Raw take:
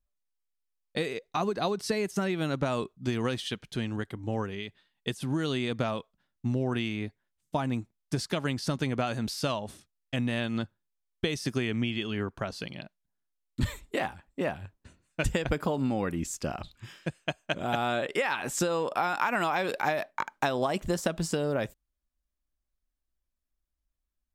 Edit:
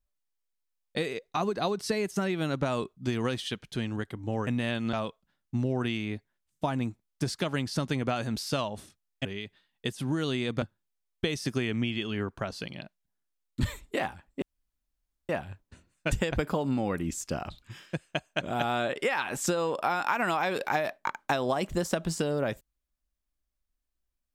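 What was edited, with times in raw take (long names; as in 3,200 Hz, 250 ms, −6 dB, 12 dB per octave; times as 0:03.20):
0:04.47–0:05.84: swap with 0:10.16–0:10.62
0:14.42: splice in room tone 0.87 s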